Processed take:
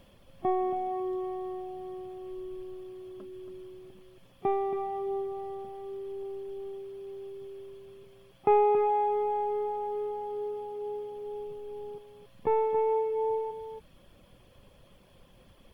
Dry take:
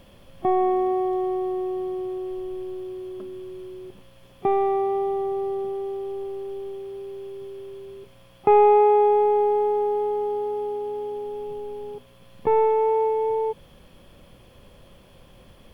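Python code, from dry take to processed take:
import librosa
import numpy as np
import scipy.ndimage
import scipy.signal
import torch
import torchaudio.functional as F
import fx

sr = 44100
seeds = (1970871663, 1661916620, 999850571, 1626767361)

y = fx.dereverb_blind(x, sr, rt60_s=0.64)
y = y + 10.0 ** (-8.5 / 20.0) * np.pad(y, (int(277 * sr / 1000.0), 0))[:len(y)]
y = y * 10.0 ** (-6.0 / 20.0)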